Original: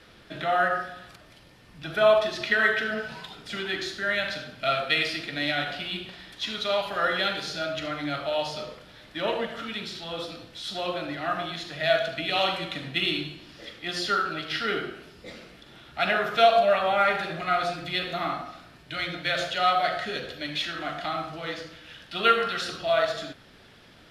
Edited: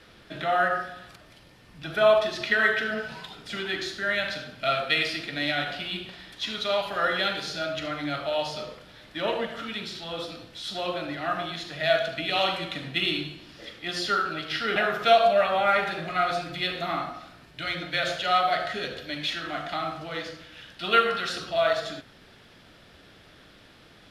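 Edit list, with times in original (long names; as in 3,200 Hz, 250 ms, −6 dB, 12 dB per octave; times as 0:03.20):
0:14.76–0:16.08: remove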